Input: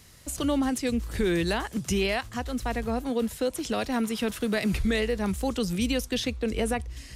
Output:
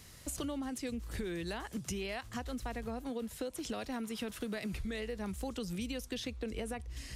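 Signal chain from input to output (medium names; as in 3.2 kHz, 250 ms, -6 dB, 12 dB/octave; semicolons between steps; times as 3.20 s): compression 6:1, threshold -35 dBFS, peak gain reduction 13 dB; trim -1.5 dB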